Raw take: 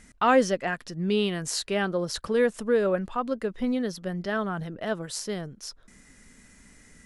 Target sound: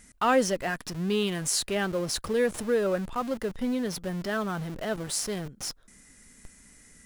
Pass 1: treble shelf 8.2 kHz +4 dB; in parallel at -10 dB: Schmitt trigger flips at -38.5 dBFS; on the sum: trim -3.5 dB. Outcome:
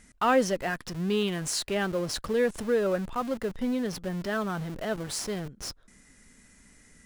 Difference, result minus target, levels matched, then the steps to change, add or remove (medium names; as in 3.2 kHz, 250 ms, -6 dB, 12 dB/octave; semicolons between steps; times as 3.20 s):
8 kHz band -3.5 dB
change: treble shelf 8.2 kHz +14 dB